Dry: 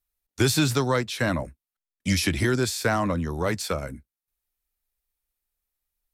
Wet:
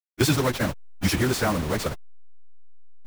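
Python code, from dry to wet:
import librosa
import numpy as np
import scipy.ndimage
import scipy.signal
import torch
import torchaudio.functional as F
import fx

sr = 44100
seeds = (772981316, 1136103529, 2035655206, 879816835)

y = fx.delta_hold(x, sr, step_db=-25.5)
y = fx.stretch_vocoder_free(y, sr, factor=0.5)
y = y * 10.0 ** (4.5 / 20.0)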